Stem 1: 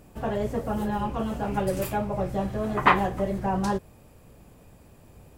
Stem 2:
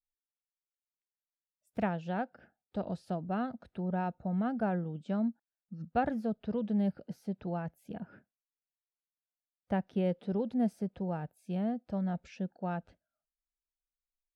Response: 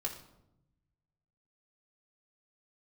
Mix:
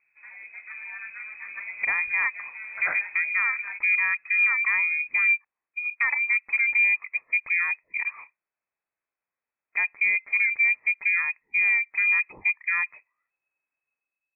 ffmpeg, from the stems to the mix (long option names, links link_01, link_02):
-filter_complex "[0:a]volume=-18.5dB[link_01];[1:a]acontrast=67,adelay=50,volume=-2dB[link_02];[link_01][link_02]amix=inputs=2:normalize=0,dynaudnorm=framelen=170:gausssize=7:maxgain=8dB,lowpass=frequency=2200:width_type=q:width=0.5098,lowpass=frequency=2200:width_type=q:width=0.6013,lowpass=frequency=2200:width_type=q:width=0.9,lowpass=frequency=2200:width_type=q:width=2.563,afreqshift=-2600,alimiter=limit=-14.5dB:level=0:latency=1:release=186"